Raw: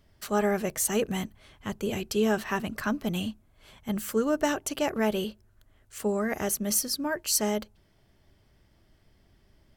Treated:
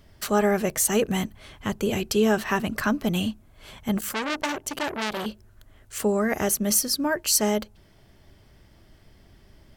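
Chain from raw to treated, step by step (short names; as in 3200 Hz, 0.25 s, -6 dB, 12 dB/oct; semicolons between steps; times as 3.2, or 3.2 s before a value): in parallel at 0 dB: compressor, threshold -36 dBFS, peak gain reduction 14.5 dB; 3.98–5.26 on the sum: core saturation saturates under 3200 Hz; gain +2.5 dB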